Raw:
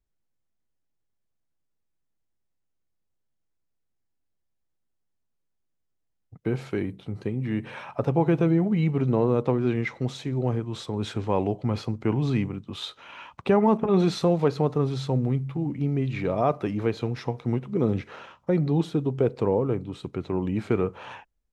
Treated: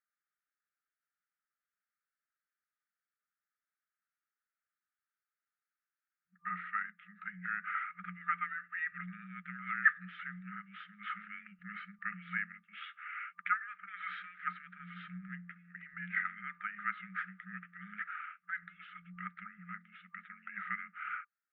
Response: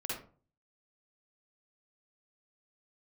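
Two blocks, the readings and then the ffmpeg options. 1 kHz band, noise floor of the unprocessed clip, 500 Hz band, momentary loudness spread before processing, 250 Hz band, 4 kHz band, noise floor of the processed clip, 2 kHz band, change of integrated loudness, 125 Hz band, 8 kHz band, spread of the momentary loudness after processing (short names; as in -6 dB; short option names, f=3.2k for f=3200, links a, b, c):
-8.0 dB, -76 dBFS, under -40 dB, 12 LU, -26.5 dB, -18.0 dB, under -85 dBFS, +5.0 dB, -13.5 dB, -28.5 dB, n/a, 13 LU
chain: -af "afftfilt=real='re*(1-between(b*sr/4096,130,1500))':imag='im*(1-between(b*sr/4096,130,1500))':win_size=4096:overlap=0.75,equalizer=f=150:t=o:w=0.2:g=8.5,highpass=f=290:t=q:w=0.5412,highpass=f=290:t=q:w=1.307,lowpass=f=2.2k:t=q:w=0.5176,lowpass=f=2.2k:t=q:w=0.7071,lowpass=f=2.2k:t=q:w=1.932,afreqshift=-310,volume=8.5dB"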